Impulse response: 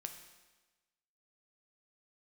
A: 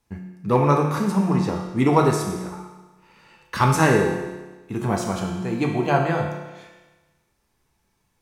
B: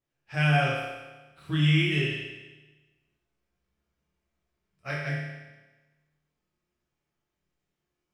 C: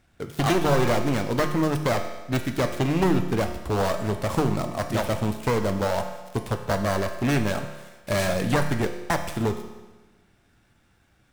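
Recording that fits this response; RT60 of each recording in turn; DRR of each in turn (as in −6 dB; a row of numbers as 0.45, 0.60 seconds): C; 1.2, 1.2, 1.2 seconds; 0.0, −7.0, 5.5 decibels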